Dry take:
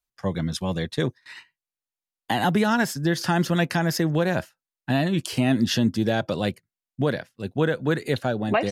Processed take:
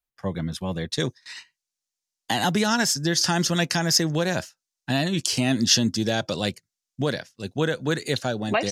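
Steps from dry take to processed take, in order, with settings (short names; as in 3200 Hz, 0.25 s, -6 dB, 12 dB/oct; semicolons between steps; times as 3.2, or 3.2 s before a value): bell 6000 Hz -3 dB 1.4 oct, from 0.92 s +15 dB; gain -2 dB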